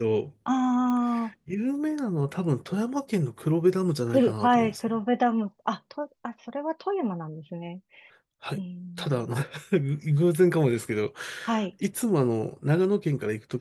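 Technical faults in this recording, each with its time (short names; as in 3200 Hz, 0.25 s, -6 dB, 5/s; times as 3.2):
0.9 pop -19 dBFS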